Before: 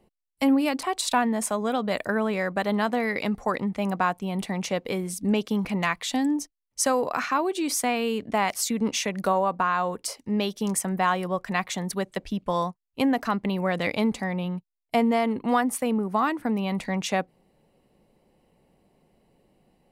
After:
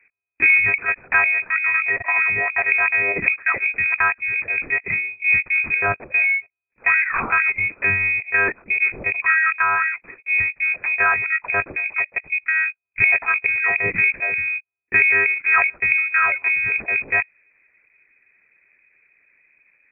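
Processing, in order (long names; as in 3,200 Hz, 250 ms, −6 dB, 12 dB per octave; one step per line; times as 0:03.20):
low-shelf EQ 75 Hz −11.5 dB
one-pitch LPC vocoder at 8 kHz 300 Hz
voice inversion scrambler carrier 2,500 Hz
level +5.5 dB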